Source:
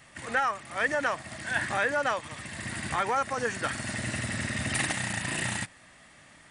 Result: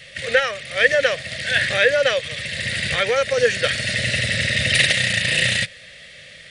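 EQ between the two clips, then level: EQ curve 160 Hz 0 dB, 310 Hz -14 dB, 520 Hz +10 dB, 900 Hz -20 dB, 1900 Hz +5 dB, 3800 Hz +11 dB, 7700 Hz -3 dB; +8.5 dB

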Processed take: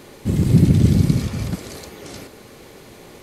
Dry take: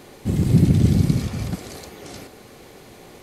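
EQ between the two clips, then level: notch 740 Hz, Q 12; +2.0 dB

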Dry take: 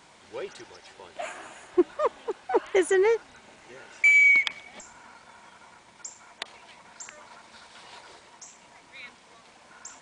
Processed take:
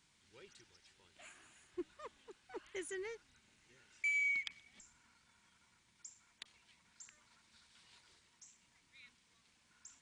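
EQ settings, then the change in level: passive tone stack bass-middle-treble 6-0-2; +1.0 dB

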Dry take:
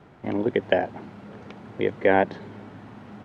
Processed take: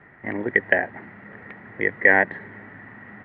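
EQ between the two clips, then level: synth low-pass 1900 Hz, resonance Q 13; -3.5 dB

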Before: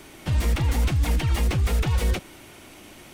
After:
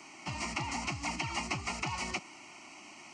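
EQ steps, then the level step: HPF 310 Hz 12 dB/oct; brick-wall FIR low-pass 11000 Hz; fixed phaser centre 2400 Hz, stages 8; 0.0 dB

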